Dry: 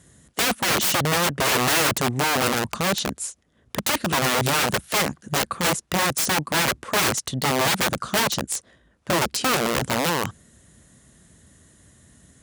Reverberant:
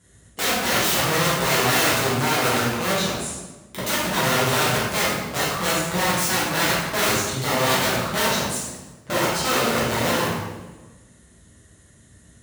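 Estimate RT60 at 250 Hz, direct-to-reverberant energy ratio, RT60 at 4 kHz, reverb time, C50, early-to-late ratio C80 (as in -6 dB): 1.4 s, -9.5 dB, 0.90 s, 1.2 s, -1.0 dB, 2.5 dB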